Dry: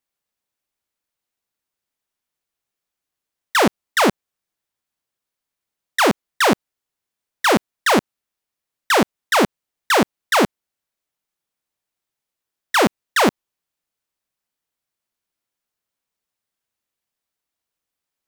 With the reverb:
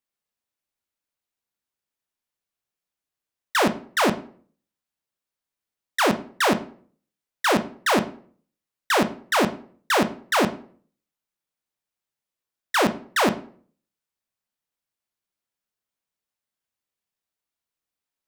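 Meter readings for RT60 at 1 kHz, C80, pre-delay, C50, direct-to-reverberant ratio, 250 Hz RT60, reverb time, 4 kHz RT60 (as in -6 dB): 0.45 s, 18.5 dB, 13 ms, 14.0 dB, 9.0 dB, 0.55 s, 0.50 s, 0.35 s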